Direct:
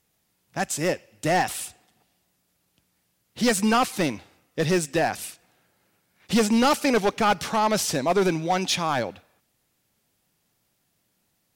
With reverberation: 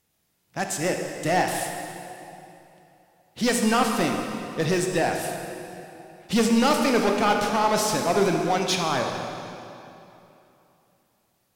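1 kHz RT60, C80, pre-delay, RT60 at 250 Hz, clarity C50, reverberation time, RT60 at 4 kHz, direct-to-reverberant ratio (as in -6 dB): 3.0 s, 4.5 dB, 22 ms, 2.9 s, 3.5 dB, 3.0 s, 2.4 s, 2.5 dB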